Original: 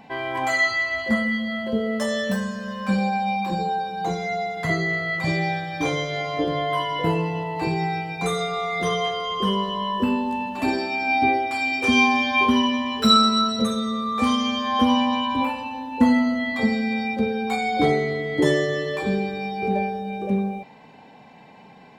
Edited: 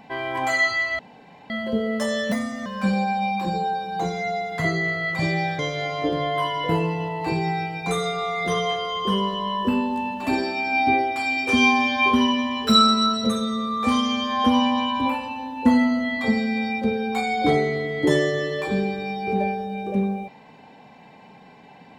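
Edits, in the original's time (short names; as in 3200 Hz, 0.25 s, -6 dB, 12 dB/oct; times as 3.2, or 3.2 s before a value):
0.99–1.5 room tone
2.32–2.71 speed 115%
5.64–5.94 cut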